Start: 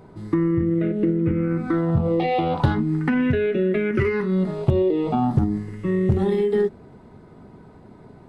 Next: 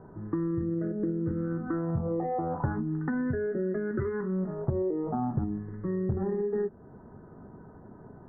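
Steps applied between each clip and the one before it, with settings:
downward compressor 1.5 to 1, threshold −35 dBFS, peak gain reduction 8 dB
Butterworth low-pass 1,800 Hz 96 dB per octave
level −3 dB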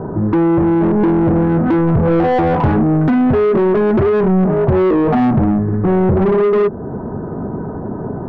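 spectral tilt −4 dB per octave
mid-hump overdrive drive 34 dB, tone 1,100 Hz, clips at −5 dBFS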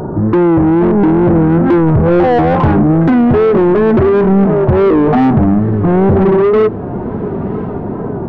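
feedback delay with all-pass diffusion 1,051 ms, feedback 45%, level −16 dB
tape wow and flutter 93 cents
level +3.5 dB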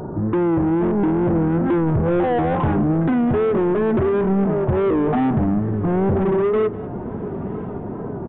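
single-tap delay 200 ms −18.5 dB
downsampling to 8,000 Hz
level −9 dB

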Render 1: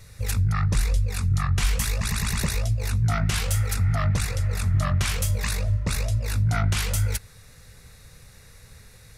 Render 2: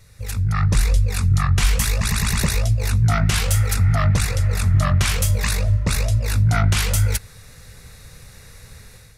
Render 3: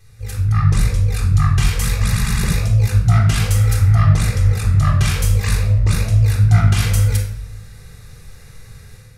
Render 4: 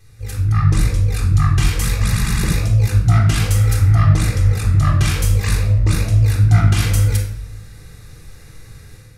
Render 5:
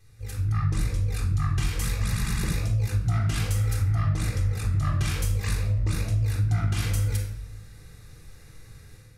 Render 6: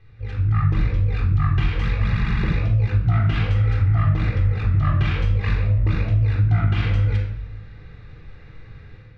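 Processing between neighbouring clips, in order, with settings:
automatic gain control gain up to 9 dB; level −3 dB
rectangular room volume 2,000 cubic metres, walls furnished, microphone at 3.8 metres; level −4.5 dB
parametric band 310 Hz +13 dB 0.23 octaves
downward compressor 3 to 1, threshold −13 dBFS, peak gain reduction 6 dB; level −8 dB
low-pass filter 3,200 Hz 24 dB per octave; level +6 dB

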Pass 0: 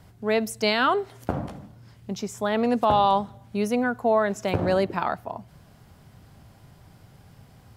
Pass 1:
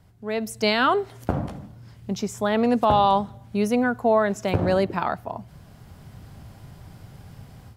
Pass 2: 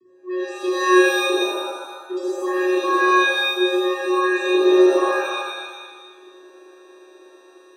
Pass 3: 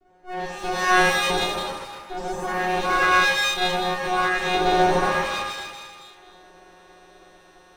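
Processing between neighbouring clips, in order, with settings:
low-shelf EQ 170 Hz +4.5 dB; automatic gain control gain up to 11.5 dB; level −7 dB
mains hum 60 Hz, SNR 25 dB; channel vocoder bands 16, square 366 Hz; reverb with rising layers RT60 1.3 s, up +7 semitones, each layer −2 dB, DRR −7.5 dB; level −4.5 dB
lower of the sound and its delayed copy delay 9.8 ms

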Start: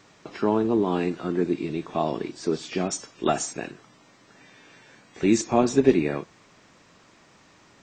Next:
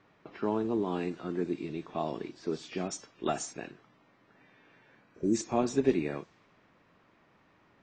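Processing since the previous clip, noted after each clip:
healed spectral selection 0:05.09–0:05.32, 670–5,000 Hz before
low-pass that shuts in the quiet parts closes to 2,400 Hz, open at −20 dBFS
level −8 dB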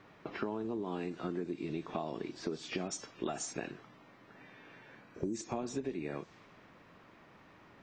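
in parallel at −3 dB: brickwall limiter −23 dBFS, peak gain reduction 10 dB
on the sum: downward compressor 16 to 1, threshold −34 dBFS, peak gain reduction 18 dB
level +1 dB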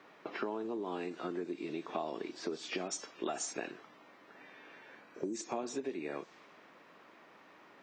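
high-pass filter 300 Hz 12 dB per octave
level +1.5 dB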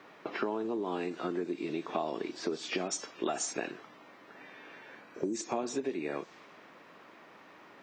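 low-shelf EQ 70 Hz +7.5 dB
level +4 dB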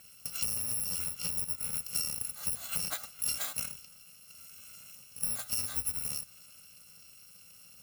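samples in bit-reversed order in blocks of 128 samples
mains-hum notches 60/120 Hz

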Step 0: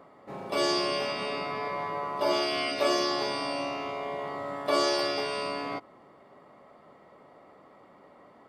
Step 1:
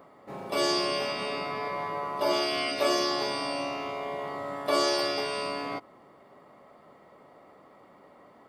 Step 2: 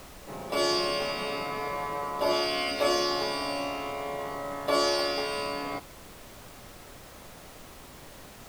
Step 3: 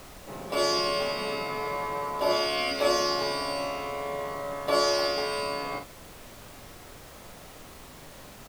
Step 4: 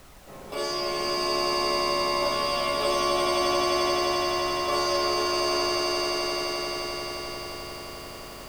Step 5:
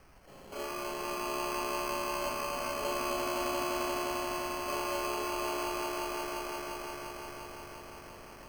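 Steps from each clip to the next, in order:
high-shelf EQ 11,000 Hz +9.5 dB
background noise pink −48 dBFS
double-tracking delay 44 ms −7 dB
flanger 0.87 Hz, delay 0.5 ms, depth 2 ms, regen +70%; on a send: echo that builds up and dies away 87 ms, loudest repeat 8, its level −4.5 dB
decimation without filtering 12×; level −9 dB

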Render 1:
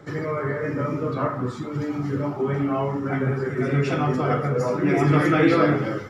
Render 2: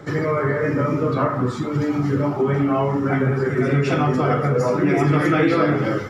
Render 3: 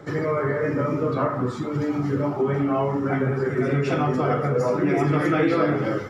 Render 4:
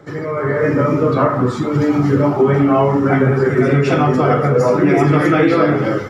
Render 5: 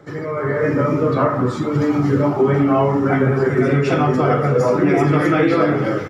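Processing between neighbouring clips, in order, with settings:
downward compressor 3 to 1, threshold −22 dBFS, peak gain reduction 7.5 dB; level +6.5 dB
parametric band 560 Hz +3 dB 2.2 octaves; level −5 dB
automatic gain control gain up to 12 dB
single-tap delay 630 ms −18 dB; level −2.5 dB

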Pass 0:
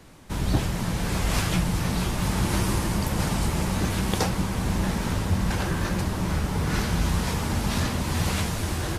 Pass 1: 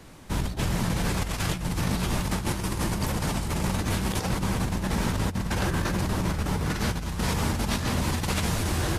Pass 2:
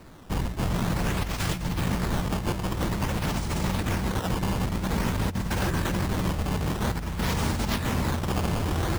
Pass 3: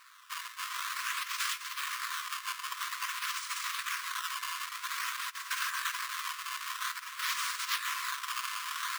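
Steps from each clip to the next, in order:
compressor whose output falls as the input rises −26 dBFS, ratio −0.5
sample-and-hold swept by an LFO 13×, swing 160% 0.5 Hz
linear-phase brick-wall high-pass 980 Hz

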